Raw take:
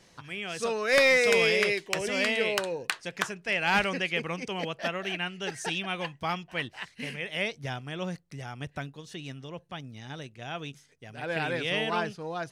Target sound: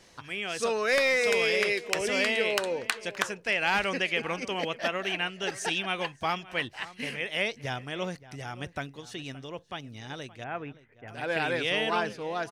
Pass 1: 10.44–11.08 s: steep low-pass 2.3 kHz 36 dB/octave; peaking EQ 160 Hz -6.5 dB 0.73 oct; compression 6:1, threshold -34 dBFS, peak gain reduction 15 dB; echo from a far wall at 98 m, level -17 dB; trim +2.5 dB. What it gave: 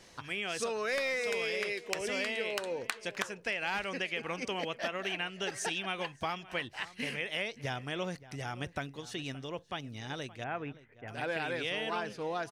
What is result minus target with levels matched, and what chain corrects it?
compression: peak gain reduction +8.5 dB
10.44–11.08 s: steep low-pass 2.3 kHz 36 dB/octave; peaking EQ 160 Hz -6.5 dB 0.73 oct; compression 6:1, threshold -24 dBFS, peak gain reduction 6.5 dB; echo from a far wall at 98 m, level -17 dB; trim +2.5 dB

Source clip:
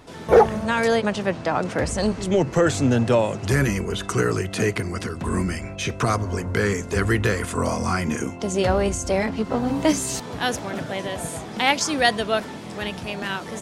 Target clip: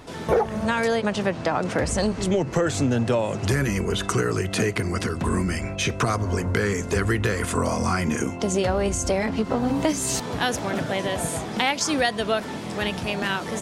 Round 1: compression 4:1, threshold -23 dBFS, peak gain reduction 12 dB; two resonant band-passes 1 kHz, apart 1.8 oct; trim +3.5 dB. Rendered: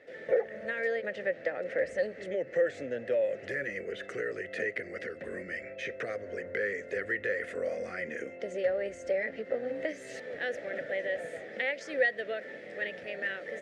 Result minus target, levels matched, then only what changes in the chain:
1 kHz band -10.0 dB
remove: two resonant band-passes 1 kHz, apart 1.8 oct

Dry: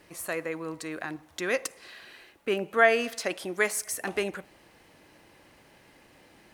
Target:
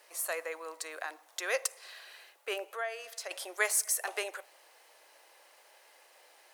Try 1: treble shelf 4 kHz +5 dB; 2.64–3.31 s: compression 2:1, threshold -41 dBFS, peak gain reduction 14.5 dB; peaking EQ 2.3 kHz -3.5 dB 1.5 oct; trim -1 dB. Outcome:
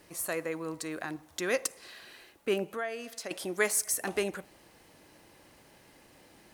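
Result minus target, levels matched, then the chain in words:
250 Hz band +16.0 dB
treble shelf 4 kHz +5 dB; 2.64–3.31 s: compression 2:1, threshold -41 dBFS, peak gain reduction 14.5 dB; inverse Chebyshev high-pass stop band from 200 Hz, stop band 50 dB; peaking EQ 2.3 kHz -3.5 dB 1.5 oct; trim -1 dB

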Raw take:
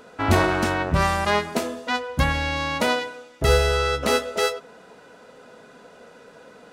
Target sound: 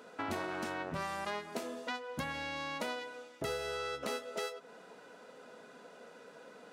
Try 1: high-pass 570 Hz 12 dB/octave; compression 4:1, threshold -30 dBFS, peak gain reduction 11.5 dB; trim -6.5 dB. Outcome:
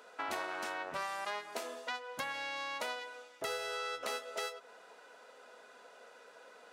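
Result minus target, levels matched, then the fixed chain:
250 Hz band -10.0 dB
high-pass 180 Hz 12 dB/octave; compression 4:1, threshold -30 dBFS, peak gain reduction 12.5 dB; trim -6.5 dB

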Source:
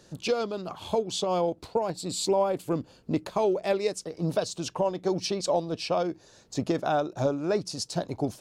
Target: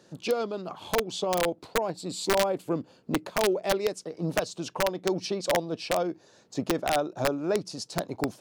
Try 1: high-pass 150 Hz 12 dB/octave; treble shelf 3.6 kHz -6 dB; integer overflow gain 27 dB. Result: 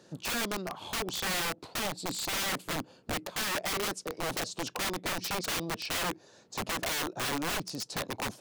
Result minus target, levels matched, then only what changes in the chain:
integer overflow: distortion +26 dB
change: integer overflow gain 16.5 dB

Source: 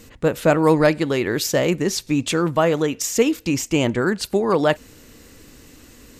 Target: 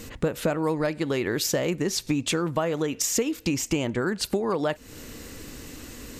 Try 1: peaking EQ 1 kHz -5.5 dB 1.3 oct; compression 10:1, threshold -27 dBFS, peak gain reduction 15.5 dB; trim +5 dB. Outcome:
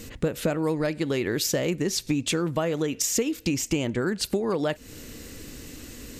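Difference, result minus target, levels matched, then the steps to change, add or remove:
1 kHz band -3.0 dB
remove: peaking EQ 1 kHz -5.5 dB 1.3 oct

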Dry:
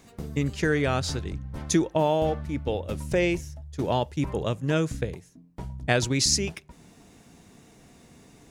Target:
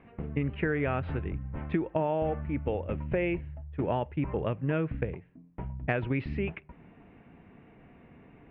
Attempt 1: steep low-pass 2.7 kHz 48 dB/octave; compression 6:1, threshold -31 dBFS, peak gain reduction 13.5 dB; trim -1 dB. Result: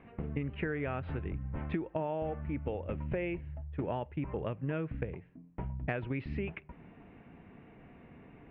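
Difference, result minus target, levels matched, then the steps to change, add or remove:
compression: peak gain reduction +6 dB
change: compression 6:1, threshold -23.5 dBFS, peak gain reduction 7 dB

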